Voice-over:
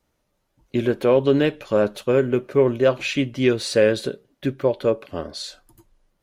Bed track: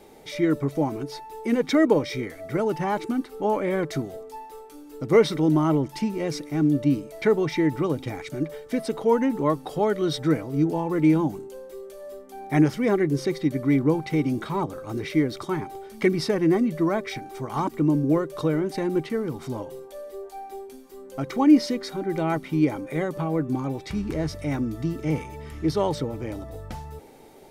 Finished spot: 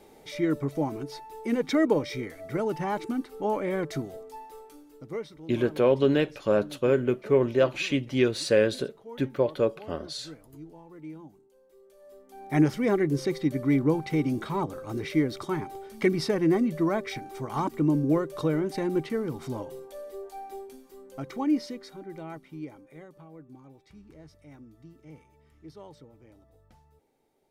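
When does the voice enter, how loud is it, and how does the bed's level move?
4.75 s, -4.5 dB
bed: 4.7 s -4 dB
5.36 s -23 dB
11.5 s -23 dB
12.61 s -2.5 dB
20.58 s -2.5 dB
23.33 s -23 dB

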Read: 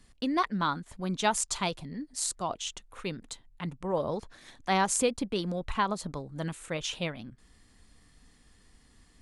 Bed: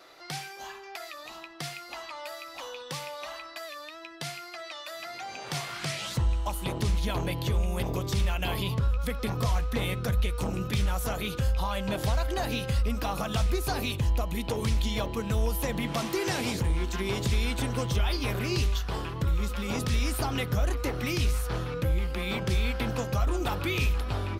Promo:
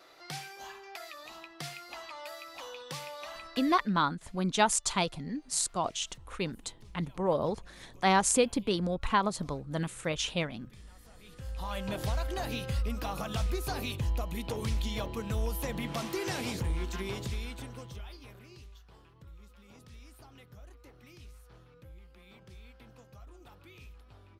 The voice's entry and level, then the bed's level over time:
3.35 s, +1.5 dB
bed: 3.72 s -4 dB
4.06 s -27 dB
11.13 s -27 dB
11.73 s -5 dB
16.96 s -5 dB
18.59 s -25 dB

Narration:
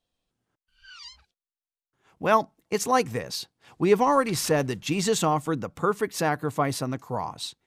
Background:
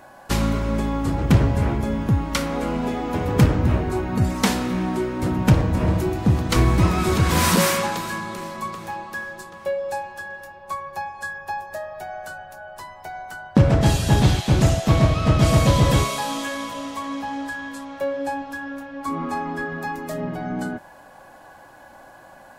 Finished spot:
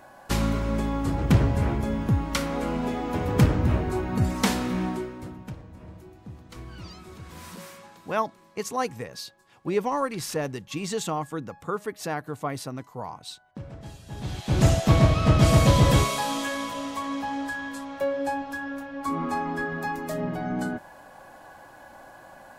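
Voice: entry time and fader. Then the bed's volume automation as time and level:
5.85 s, -5.5 dB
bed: 4.86 s -3.5 dB
5.56 s -24.5 dB
14.06 s -24.5 dB
14.65 s -1.5 dB

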